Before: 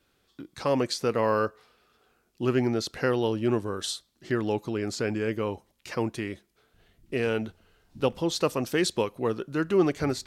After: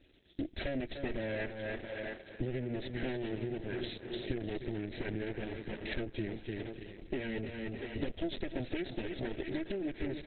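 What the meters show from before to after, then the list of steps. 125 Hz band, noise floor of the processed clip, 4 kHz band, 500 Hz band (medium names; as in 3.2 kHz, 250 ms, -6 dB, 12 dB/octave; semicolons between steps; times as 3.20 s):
-8.0 dB, -57 dBFS, -11.0 dB, -12.0 dB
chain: comb filter that takes the minimum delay 3.1 ms; Butterworth band-stop 1.1 kHz, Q 1.1; thinning echo 675 ms, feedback 32%, high-pass 370 Hz, level -16 dB; peak limiter -22.5 dBFS, peak gain reduction 9.5 dB; dynamic bell 1.7 kHz, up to +4 dB, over -55 dBFS, Q 1.5; feedback delay 297 ms, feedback 32%, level -10 dB; compression 20:1, threshold -41 dBFS, peak gain reduction 16.5 dB; bass shelf 340 Hz +3.5 dB; trim +8 dB; Opus 8 kbps 48 kHz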